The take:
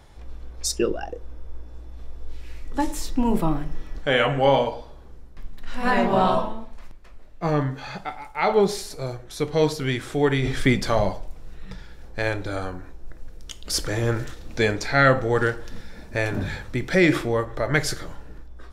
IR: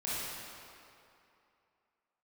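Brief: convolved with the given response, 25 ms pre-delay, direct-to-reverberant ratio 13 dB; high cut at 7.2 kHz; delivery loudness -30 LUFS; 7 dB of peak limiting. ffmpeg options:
-filter_complex "[0:a]lowpass=7200,alimiter=limit=0.237:level=0:latency=1,asplit=2[s0][s1];[1:a]atrim=start_sample=2205,adelay=25[s2];[s1][s2]afir=irnorm=-1:irlink=0,volume=0.119[s3];[s0][s3]amix=inputs=2:normalize=0,volume=0.596"

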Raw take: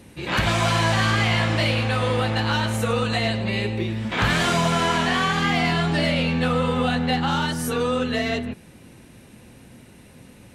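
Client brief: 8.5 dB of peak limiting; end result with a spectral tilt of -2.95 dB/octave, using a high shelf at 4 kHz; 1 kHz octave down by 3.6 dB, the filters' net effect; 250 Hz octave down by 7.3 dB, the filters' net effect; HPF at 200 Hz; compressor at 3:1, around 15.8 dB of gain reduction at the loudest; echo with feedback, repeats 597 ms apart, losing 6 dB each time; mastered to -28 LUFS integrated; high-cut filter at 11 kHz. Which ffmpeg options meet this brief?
-af "highpass=200,lowpass=11000,equalizer=f=250:t=o:g=-6,equalizer=f=1000:t=o:g=-5,highshelf=f=4000:g=6.5,acompressor=threshold=0.00794:ratio=3,alimiter=level_in=2.66:limit=0.0631:level=0:latency=1,volume=0.376,aecho=1:1:597|1194|1791|2388|2985|3582:0.501|0.251|0.125|0.0626|0.0313|0.0157,volume=4.22"

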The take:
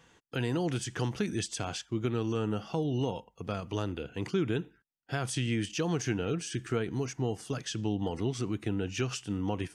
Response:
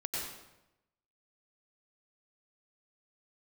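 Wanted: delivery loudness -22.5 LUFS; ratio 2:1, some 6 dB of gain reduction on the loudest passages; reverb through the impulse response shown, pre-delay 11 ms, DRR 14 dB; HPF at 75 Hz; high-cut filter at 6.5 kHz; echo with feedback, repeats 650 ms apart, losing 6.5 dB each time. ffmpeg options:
-filter_complex "[0:a]highpass=75,lowpass=6500,acompressor=threshold=0.0141:ratio=2,aecho=1:1:650|1300|1950|2600|3250|3900:0.473|0.222|0.105|0.0491|0.0231|0.0109,asplit=2[s0][s1];[1:a]atrim=start_sample=2205,adelay=11[s2];[s1][s2]afir=irnorm=-1:irlink=0,volume=0.133[s3];[s0][s3]amix=inputs=2:normalize=0,volume=5.62"

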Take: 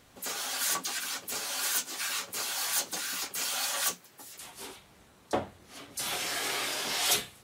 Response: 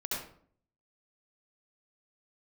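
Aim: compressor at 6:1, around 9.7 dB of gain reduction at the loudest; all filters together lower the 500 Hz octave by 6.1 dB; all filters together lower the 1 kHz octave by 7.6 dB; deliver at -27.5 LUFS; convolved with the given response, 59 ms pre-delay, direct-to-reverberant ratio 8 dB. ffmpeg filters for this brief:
-filter_complex "[0:a]equalizer=f=500:t=o:g=-5,equalizer=f=1000:t=o:g=-9,acompressor=threshold=0.0251:ratio=6,asplit=2[s0][s1];[1:a]atrim=start_sample=2205,adelay=59[s2];[s1][s2]afir=irnorm=-1:irlink=0,volume=0.251[s3];[s0][s3]amix=inputs=2:normalize=0,volume=2.11"

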